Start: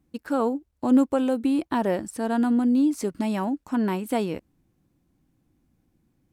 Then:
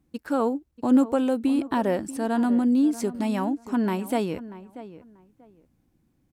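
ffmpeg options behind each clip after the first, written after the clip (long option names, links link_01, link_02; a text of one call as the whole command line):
ffmpeg -i in.wav -filter_complex "[0:a]asplit=2[link_01][link_02];[link_02]adelay=637,lowpass=frequency=1900:poles=1,volume=-15dB,asplit=2[link_03][link_04];[link_04]adelay=637,lowpass=frequency=1900:poles=1,volume=0.21[link_05];[link_01][link_03][link_05]amix=inputs=3:normalize=0" out.wav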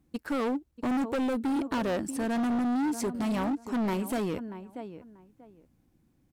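ffmpeg -i in.wav -af "asoftclip=type=hard:threshold=-26dB" out.wav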